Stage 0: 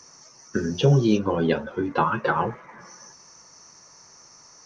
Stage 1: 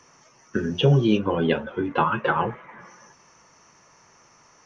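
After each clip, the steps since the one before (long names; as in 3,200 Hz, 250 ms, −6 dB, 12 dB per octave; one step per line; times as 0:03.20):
high shelf with overshoot 3,800 Hz −6 dB, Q 3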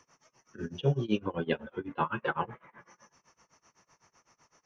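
amplitude tremolo 7.9 Hz, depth 95%
level −6.5 dB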